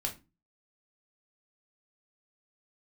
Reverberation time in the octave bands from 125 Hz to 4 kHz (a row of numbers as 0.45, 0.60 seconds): 0.45, 0.45, 0.30, 0.25, 0.25, 0.20 seconds